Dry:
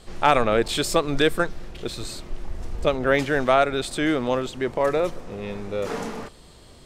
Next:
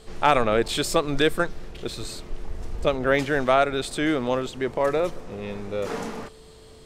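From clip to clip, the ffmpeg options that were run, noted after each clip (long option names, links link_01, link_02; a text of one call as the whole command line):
ffmpeg -i in.wav -af "aeval=exprs='val(0)+0.00355*sin(2*PI*440*n/s)':channel_layout=same,volume=-1dB" out.wav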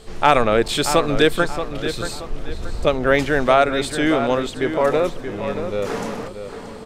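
ffmpeg -i in.wav -filter_complex "[0:a]asplit=2[link_01][link_02];[link_02]adelay=628,lowpass=frequency=3700:poles=1,volume=-9dB,asplit=2[link_03][link_04];[link_04]adelay=628,lowpass=frequency=3700:poles=1,volume=0.37,asplit=2[link_05][link_06];[link_06]adelay=628,lowpass=frequency=3700:poles=1,volume=0.37,asplit=2[link_07][link_08];[link_08]adelay=628,lowpass=frequency=3700:poles=1,volume=0.37[link_09];[link_01][link_03][link_05][link_07][link_09]amix=inputs=5:normalize=0,volume=4.5dB" out.wav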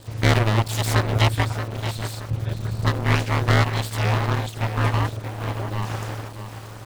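ffmpeg -i in.wav -af "acrusher=bits=8:dc=4:mix=0:aa=0.000001,aeval=exprs='abs(val(0))':channel_layout=same,aeval=exprs='val(0)*sin(2*PI*110*n/s)':channel_layout=same" out.wav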